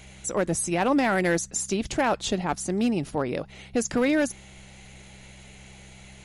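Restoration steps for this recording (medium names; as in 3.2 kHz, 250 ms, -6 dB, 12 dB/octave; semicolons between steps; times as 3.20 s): clip repair -15.5 dBFS; de-hum 65.2 Hz, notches 3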